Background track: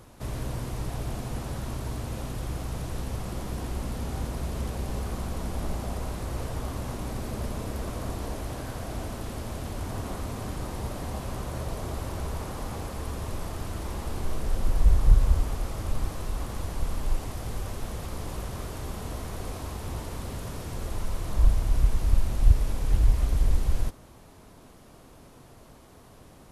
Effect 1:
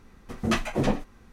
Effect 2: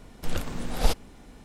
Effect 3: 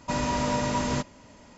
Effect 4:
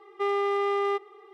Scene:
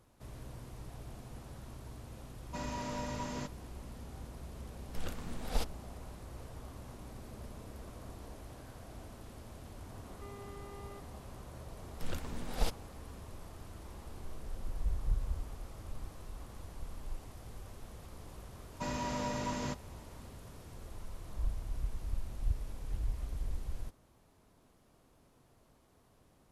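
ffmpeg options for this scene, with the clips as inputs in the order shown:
ffmpeg -i bed.wav -i cue0.wav -i cue1.wav -i cue2.wav -i cue3.wav -filter_complex "[3:a]asplit=2[link_01][link_02];[2:a]asplit=2[link_03][link_04];[0:a]volume=-15dB[link_05];[4:a]alimiter=level_in=5.5dB:limit=-24dB:level=0:latency=1:release=71,volume=-5.5dB[link_06];[link_01]atrim=end=1.57,asetpts=PTS-STARTPTS,volume=-13dB,afade=type=in:duration=0.004:curve=hsin,afade=type=out:start_time=1.566:duration=0.004:curve=hsin,adelay=2450[link_07];[link_03]atrim=end=1.44,asetpts=PTS-STARTPTS,volume=-10.5dB,afade=type=in:duration=0.004:curve=hsin,afade=type=out:start_time=1.436:duration=0.004:curve=hsin,adelay=4710[link_08];[link_06]atrim=end=1.33,asetpts=PTS-STARTPTS,volume=-15.5dB,afade=type=in:duration=0.004:curve=hsin,afade=type=out:start_time=1.326:duration=0.004:curve=hsin,adelay=441882S[link_09];[link_04]atrim=end=1.44,asetpts=PTS-STARTPTS,volume=-9.5dB,afade=type=in:duration=0.004:curve=hsin,afade=type=out:start_time=1.436:duration=0.004:curve=hsin,adelay=11770[link_10];[link_02]atrim=end=1.57,asetpts=PTS-STARTPTS,volume=-10dB,afade=type=in:duration=0.004:curve=hsin,afade=type=out:start_time=1.566:duration=0.004:curve=hsin,adelay=18720[link_11];[link_05][link_07][link_08][link_09][link_10][link_11]amix=inputs=6:normalize=0" out.wav

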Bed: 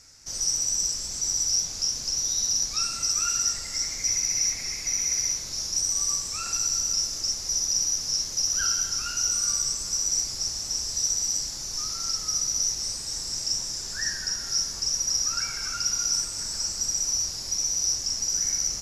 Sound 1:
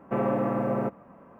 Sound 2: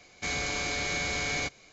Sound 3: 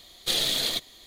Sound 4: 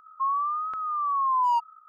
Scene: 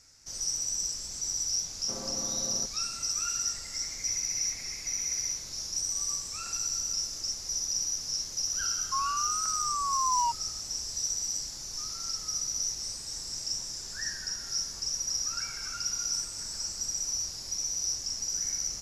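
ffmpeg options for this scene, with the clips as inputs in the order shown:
ffmpeg -i bed.wav -i cue0.wav -i cue1.wav -i cue2.wav -i cue3.wav -filter_complex "[0:a]volume=-6dB[link_01];[1:a]atrim=end=1.39,asetpts=PTS-STARTPTS,volume=-16dB,afade=type=in:duration=0.004:curve=hsin,afade=type=out:start_time=1.386:duration=0.004:curve=hsin,adelay=1770[link_02];[4:a]atrim=end=1.88,asetpts=PTS-STARTPTS,volume=-5dB,afade=type=in:duration=0.004:curve=hsin,afade=type=out:start_time=1.876:duration=0.004:curve=hsin,adelay=8720[link_03];[link_01][link_02][link_03]amix=inputs=3:normalize=0" out.wav

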